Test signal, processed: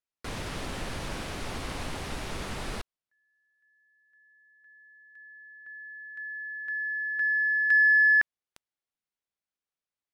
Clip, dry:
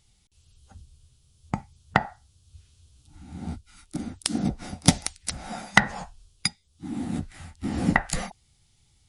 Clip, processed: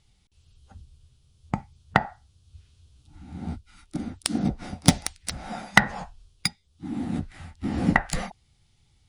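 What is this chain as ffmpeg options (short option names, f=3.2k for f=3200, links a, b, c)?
-af "adynamicsmooth=sensitivity=1:basefreq=6.1k,aexciter=amount=2:drive=1.3:freq=9.2k,volume=1dB"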